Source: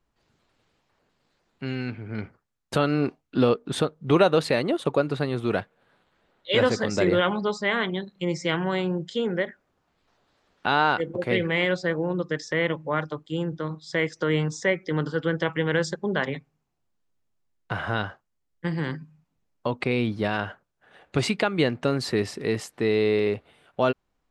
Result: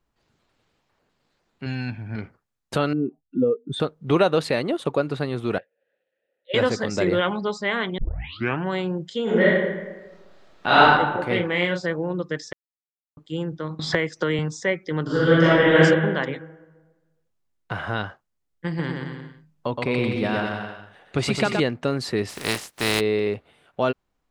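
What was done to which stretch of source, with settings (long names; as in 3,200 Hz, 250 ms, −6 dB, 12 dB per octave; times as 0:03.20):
0:01.66–0:02.16: comb filter 1.2 ms, depth 71%
0:02.93–0:03.80: expanding power law on the bin magnitudes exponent 2.2
0:05.58–0:06.54: formant filter e
0:07.98: tape start 0.66 s
0:09.23–0:10.81: thrown reverb, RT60 1.2 s, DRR −9.5 dB
0:11.32–0:11.86: double-tracking delay 34 ms −6 dB
0:12.53–0:13.17: silence
0:13.79–0:14.39: multiband upward and downward compressor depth 100%
0:15.03–0:15.78: thrown reverb, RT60 1.3 s, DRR −10.5 dB
0:18.67–0:21.60: bouncing-ball delay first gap 120 ms, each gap 0.8×, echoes 8
0:22.28–0:22.99: compressing power law on the bin magnitudes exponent 0.38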